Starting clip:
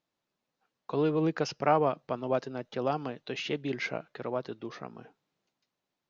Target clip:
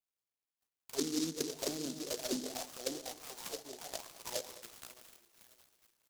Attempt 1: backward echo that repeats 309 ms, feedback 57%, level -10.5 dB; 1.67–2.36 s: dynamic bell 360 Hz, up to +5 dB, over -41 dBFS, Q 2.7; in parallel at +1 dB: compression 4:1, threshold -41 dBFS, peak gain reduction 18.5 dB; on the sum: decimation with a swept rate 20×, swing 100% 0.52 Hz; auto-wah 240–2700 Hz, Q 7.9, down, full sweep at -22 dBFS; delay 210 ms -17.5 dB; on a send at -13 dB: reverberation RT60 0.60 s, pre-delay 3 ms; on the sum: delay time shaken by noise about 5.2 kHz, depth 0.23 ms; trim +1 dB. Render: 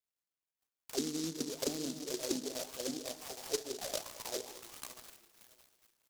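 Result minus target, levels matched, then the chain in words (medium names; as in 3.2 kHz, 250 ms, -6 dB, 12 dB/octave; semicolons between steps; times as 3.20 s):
compression: peak gain reduction -6.5 dB
backward echo that repeats 309 ms, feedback 57%, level -10.5 dB; 1.67–2.36 s: dynamic bell 360 Hz, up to +5 dB, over -41 dBFS, Q 2.7; in parallel at +1 dB: compression 4:1, threshold -49.5 dBFS, peak gain reduction 25 dB; on the sum: decimation with a swept rate 20×, swing 100% 0.52 Hz; auto-wah 240–2700 Hz, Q 7.9, down, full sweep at -22 dBFS; delay 210 ms -17.5 dB; on a send at -13 dB: reverberation RT60 0.60 s, pre-delay 3 ms; on the sum: delay time shaken by noise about 5.2 kHz, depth 0.23 ms; trim +1 dB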